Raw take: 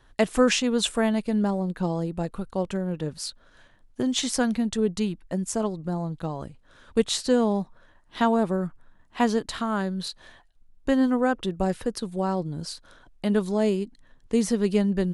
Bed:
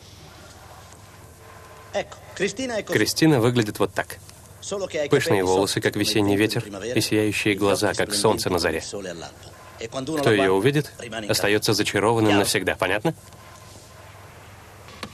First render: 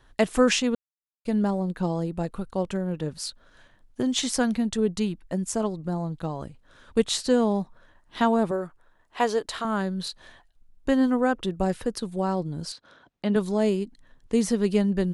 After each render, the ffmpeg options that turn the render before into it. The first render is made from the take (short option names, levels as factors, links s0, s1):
-filter_complex "[0:a]asettb=1/sr,asplit=3[s0][s1][s2];[s0]atrim=end=8.514[s3];[s1]atrim=start=8.51:end=9.65,asetpts=PTS-STARTPTS,afade=t=in:d=0.004:c=qsin,afade=t=out:st=1.136:d=0.004:c=qsin,lowshelf=f=310:t=q:w=1.5:g=-8[s4];[s2]atrim=start=9.646[s5];[s3][s4]acrossfade=d=0.004:c1=hsin:c2=qsin[s6];[s6][s5]acrossfade=d=0.004:c1=qsin:c2=hsin,asettb=1/sr,asplit=3[s7][s8][s9];[s7]atrim=end=12.724[s10];[s8]atrim=start=12.72:end=13.36,asetpts=PTS-STARTPTS,afade=t=in:d=0.004:c=qsin,afade=t=out:st=0.636:d=0.004:c=qsin,highpass=130,lowpass=4800[s11];[s9]atrim=start=13.356[s12];[s10][s11]acrossfade=d=0.004:c1=hsin:c2=qsin[s13];[s13][s12]acrossfade=d=0.004:c1=qsin:c2=hsin,asplit=3[s14][s15][s16];[s14]atrim=end=0.75,asetpts=PTS-STARTPTS,afade=t=out:st=0.746:d=0.004:c=hsin[s17];[s15]atrim=start=0.75:end=1.25,asetpts=PTS-STARTPTS,volume=0[s18];[s16]atrim=start=1.25,asetpts=PTS-STARTPTS,afade=t=in:d=0.004:c=hsin[s19];[s17][s18][s19]concat=n=3:v=0:a=1"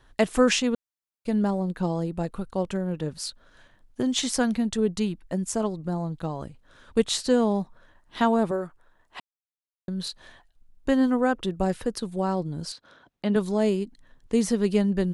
-filter_complex "[0:a]asplit=3[s0][s1][s2];[s0]atrim=end=9.2,asetpts=PTS-STARTPTS,afade=t=out:st=9.196:d=0.004:c=hsin[s3];[s1]atrim=start=9.2:end=9.88,asetpts=PTS-STARTPTS,volume=0[s4];[s2]atrim=start=9.88,asetpts=PTS-STARTPTS,afade=t=in:d=0.004:c=hsin[s5];[s3][s4][s5]concat=n=3:v=0:a=1"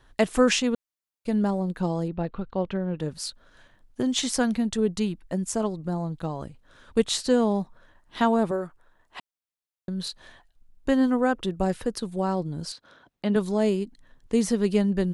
-filter_complex "[0:a]asettb=1/sr,asplit=3[s0][s1][s2];[s0]atrim=end=2.084[s3];[s1]atrim=start=2.08:end=3,asetpts=PTS-STARTPTS,afade=t=in:d=0.004:c=qsin,afade=t=out:st=0.916:d=0.004:c=qsin,lowpass=f=3900:w=0.5412,lowpass=f=3900:w=1.3066[s4];[s2]atrim=start=2.996[s5];[s3][s4]acrossfade=d=0.004:c1=hsin:c2=qsin[s6];[s6][s5]acrossfade=d=0.004:c1=qsin:c2=hsin"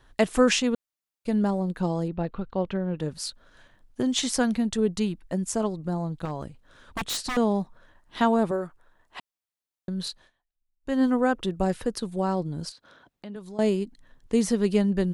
-filter_complex "[0:a]asettb=1/sr,asplit=3[s0][s1][s2];[s0]atrim=end=6.254[s3];[s1]atrim=start=6.25:end=7.37,asetpts=PTS-STARTPTS,afade=t=in:d=0.004:c=qsin,afade=t=out:st=1.116:d=0.004:c=qsin,aeval=exprs='0.0668*(abs(mod(val(0)/0.0668+3,4)-2)-1)':c=same[s4];[s2]atrim=start=7.366[s5];[s3][s4]acrossfade=d=0.004:c1=hsin:c2=qsin[s6];[s6][s5]acrossfade=d=0.004:c1=qsin:c2=hsin,asettb=1/sr,asplit=3[s7][s8][s9];[s7]atrim=end=12.694[s10];[s8]atrim=start=12.69:end=13.59,asetpts=PTS-STARTPTS,afade=t=in:d=0.004:c=qsin,afade=t=out:st=0.896:d=0.004:c=qsin,acompressor=threshold=0.00398:ratio=2:attack=3.2:release=140:knee=1:detection=peak[s11];[s9]atrim=start=13.586[s12];[s10][s11]acrossfade=d=0.004:c1=hsin:c2=qsin[s13];[s13][s12]acrossfade=d=0.004:c1=qsin:c2=hsin,asplit=3[s14][s15][s16];[s14]atrim=end=10.31,asetpts=PTS-STARTPTS,afade=t=out:st=10.09:d=0.22:silence=0.0630957[s17];[s15]atrim=start=10.31:end=10.81,asetpts=PTS-STARTPTS,volume=0.0631[s18];[s16]atrim=start=10.81,asetpts=PTS-STARTPTS,afade=t=in:d=0.22:silence=0.0630957[s19];[s17][s18][s19]concat=n=3:v=0:a=1"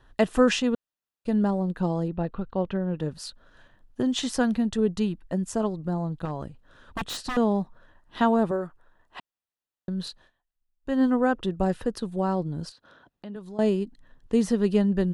-af "bass=f=250:g=1,treble=f=4000:g=-7,bandreject=f=2200:w=7.2"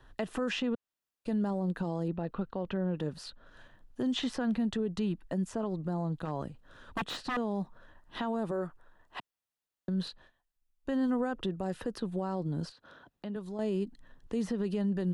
-filter_complex "[0:a]acrossover=split=130|3800[s0][s1][s2];[s0]acompressor=threshold=0.00355:ratio=4[s3];[s1]acompressor=threshold=0.0631:ratio=4[s4];[s2]acompressor=threshold=0.002:ratio=4[s5];[s3][s4][s5]amix=inputs=3:normalize=0,alimiter=limit=0.0631:level=0:latency=1:release=60"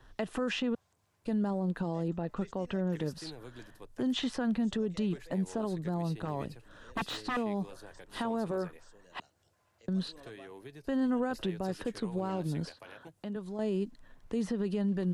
-filter_complex "[1:a]volume=0.0335[s0];[0:a][s0]amix=inputs=2:normalize=0"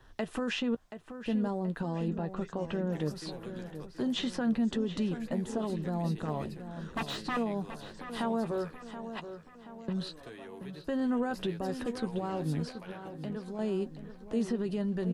-filter_complex "[0:a]asplit=2[s0][s1];[s1]adelay=13,volume=0.282[s2];[s0][s2]amix=inputs=2:normalize=0,asplit=2[s3][s4];[s4]adelay=728,lowpass=f=3400:p=1,volume=0.299,asplit=2[s5][s6];[s6]adelay=728,lowpass=f=3400:p=1,volume=0.51,asplit=2[s7][s8];[s8]adelay=728,lowpass=f=3400:p=1,volume=0.51,asplit=2[s9][s10];[s10]adelay=728,lowpass=f=3400:p=1,volume=0.51,asplit=2[s11][s12];[s12]adelay=728,lowpass=f=3400:p=1,volume=0.51,asplit=2[s13][s14];[s14]adelay=728,lowpass=f=3400:p=1,volume=0.51[s15];[s3][s5][s7][s9][s11][s13][s15]amix=inputs=7:normalize=0"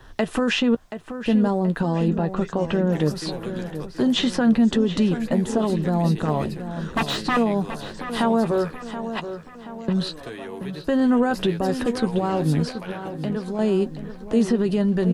-af "volume=3.76"